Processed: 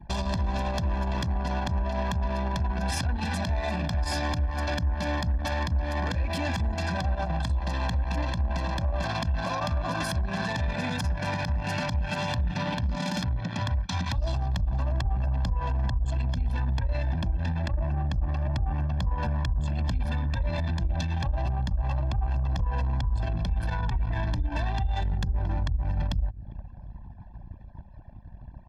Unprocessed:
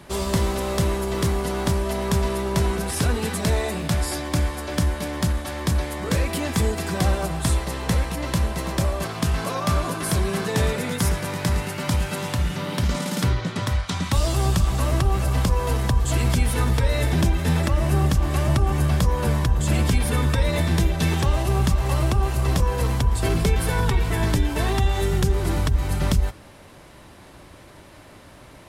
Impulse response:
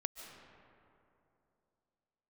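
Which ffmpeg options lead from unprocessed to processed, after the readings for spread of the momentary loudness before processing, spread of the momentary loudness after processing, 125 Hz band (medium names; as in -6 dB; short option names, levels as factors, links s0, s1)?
4 LU, 1 LU, -5.5 dB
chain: -af "acompressor=threshold=0.0355:ratio=8,highshelf=f=7000:t=q:w=1.5:g=-7,aecho=1:1:1.2:0.89,aecho=1:1:399|798|1197|1596|1995:0.119|0.0689|0.04|0.0232|0.0134,alimiter=limit=0.0708:level=0:latency=1:release=60,anlmdn=3.98,adynamicequalizer=threshold=0.00447:dfrequency=150:dqfactor=1.9:tfrequency=150:tqfactor=1.9:attack=5:release=100:ratio=0.375:range=2:mode=cutabove:tftype=bell,volume=1.68"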